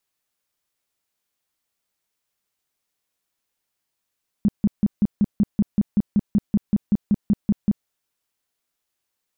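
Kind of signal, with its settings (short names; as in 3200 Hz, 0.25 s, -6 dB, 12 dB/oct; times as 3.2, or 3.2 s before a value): tone bursts 206 Hz, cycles 7, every 0.19 s, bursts 18, -13 dBFS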